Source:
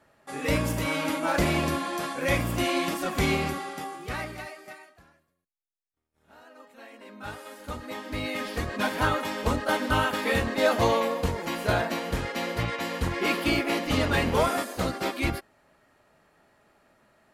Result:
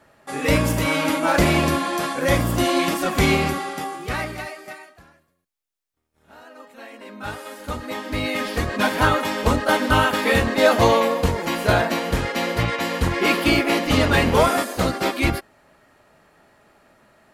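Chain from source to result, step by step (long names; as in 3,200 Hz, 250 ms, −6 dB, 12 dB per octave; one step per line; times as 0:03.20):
0:02.19–0:02.79: parametric band 2,400 Hz −8 dB 0.41 octaves
level +7 dB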